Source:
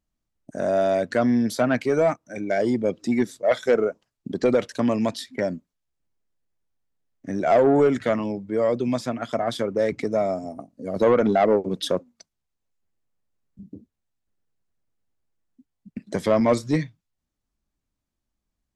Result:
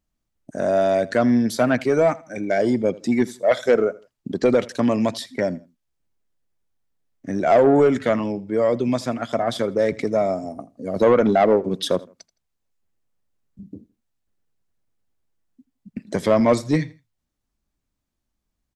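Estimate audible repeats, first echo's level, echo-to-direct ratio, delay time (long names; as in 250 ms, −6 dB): 2, −21.0 dB, −20.5 dB, 82 ms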